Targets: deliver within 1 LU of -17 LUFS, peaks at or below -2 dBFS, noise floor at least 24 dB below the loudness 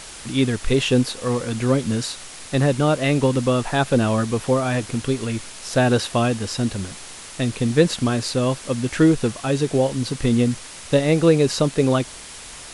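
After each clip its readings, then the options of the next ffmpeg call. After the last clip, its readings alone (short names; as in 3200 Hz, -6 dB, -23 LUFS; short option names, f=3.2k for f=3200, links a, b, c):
noise floor -38 dBFS; noise floor target -45 dBFS; loudness -21.0 LUFS; peak -3.0 dBFS; loudness target -17.0 LUFS
-> -af "afftdn=nr=7:nf=-38"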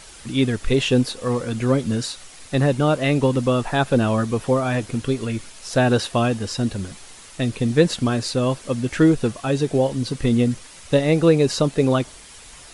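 noise floor -43 dBFS; noise floor target -45 dBFS
-> -af "afftdn=nr=6:nf=-43"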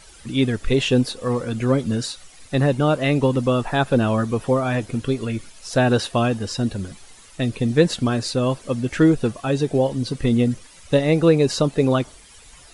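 noise floor -47 dBFS; loudness -21.0 LUFS; peak -3.0 dBFS; loudness target -17.0 LUFS
-> -af "volume=4dB,alimiter=limit=-2dB:level=0:latency=1"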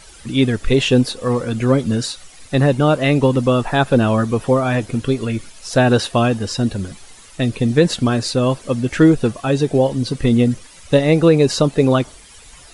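loudness -17.0 LUFS; peak -2.0 dBFS; noise floor -43 dBFS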